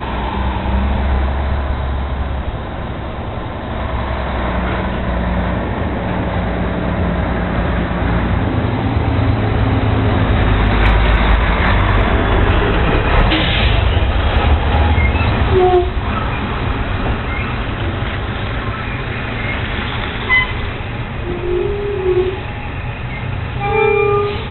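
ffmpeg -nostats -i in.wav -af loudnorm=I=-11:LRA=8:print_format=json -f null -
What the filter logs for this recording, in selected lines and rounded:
"input_i" : "-17.1",
"input_tp" : "-3.5",
"input_lra" : "6.2",
"input_thresh" : "-27.1",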